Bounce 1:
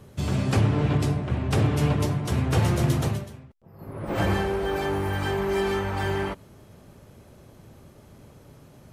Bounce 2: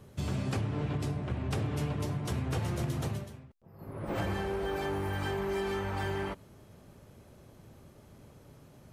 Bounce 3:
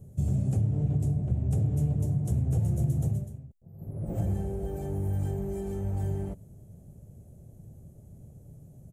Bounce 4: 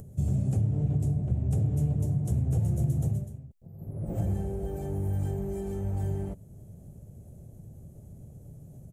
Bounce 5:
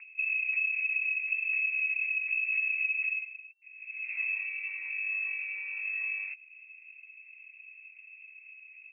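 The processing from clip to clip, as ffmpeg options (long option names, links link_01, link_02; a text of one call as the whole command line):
ffmpeg -i in.wav -af "acompressor=threshold=-24dB:ratio=6,volume=-5dB" out.wav
ffmpeg -i in.wav -af "firequalizer=gain_entry='entry(160,0);entry(260,-10);entry(720,-12);entry(1000,-28);entry(4800,-26);entry(6900,-8)':delay=0.05:min_phase=1,volume=7.5dB" out.wav
ffmpeg -i in.wav -af "acompressor=mode=upward:threshold=-41dB:ratio=2.5" out.wav
ffmpeg -i in.wav -af "lowpass=frequency=2300:width_type=q:width=0.5098,lowpass=frequency=2300:width_type=q:width=0.6013,lowpass=frequency=2300:width_type=q:width=0.9,lowpass=frequency=2300:width_type=q:width=2.563,afreqshift=-2700,volume=-4.5dB" out.wav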